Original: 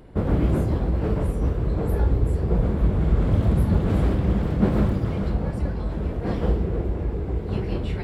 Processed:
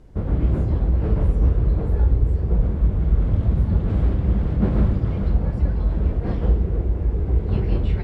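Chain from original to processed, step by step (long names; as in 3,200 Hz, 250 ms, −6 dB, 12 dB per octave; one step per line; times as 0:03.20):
low-shelf EQ 100 Hz +11.5 dB
automatic gain control
background noise blue −59 dBFS
high-frequency loss of the air 79 metres
level −6.5 dB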